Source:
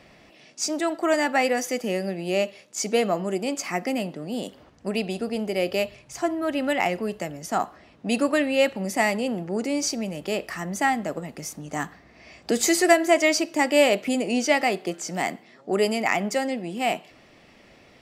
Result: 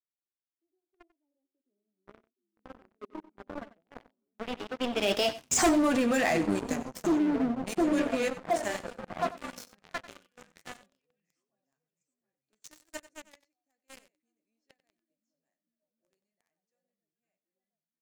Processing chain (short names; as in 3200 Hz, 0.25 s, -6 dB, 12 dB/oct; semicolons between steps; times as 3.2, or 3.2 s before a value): Doppler pass-by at 5.66, 33 m/s, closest 2.1 m; flange 1.7 Hz, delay 5.7 ms, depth 5.3 ms, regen -38%; low-pass sweep 350 Hz -> 8200 Hz, 3.23–5.64; delay with a stepping band-pass 0.717 s, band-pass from 150 Hz, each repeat 0.7 oct, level -2 dB; sample leveller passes 5; in parallel at -2 dB: negative-ratio compressor -30 dBFS, ratio -0.5; on the sum: gate -57 dBFS, range -13 dB; on a send: echo 93 ms -16.5 dB; on the sum: gain -2 dB